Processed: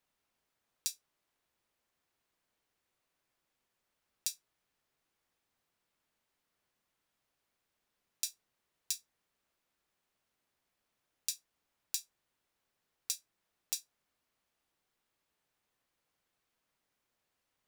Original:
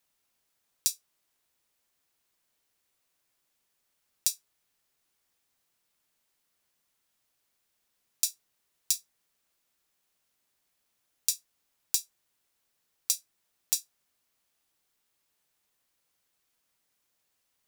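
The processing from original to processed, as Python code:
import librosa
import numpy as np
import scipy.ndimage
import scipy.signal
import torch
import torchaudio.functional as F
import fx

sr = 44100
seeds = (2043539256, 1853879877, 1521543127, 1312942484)

y = fx.high_shelf(x, sr, hz=3800.0, db=-11.0)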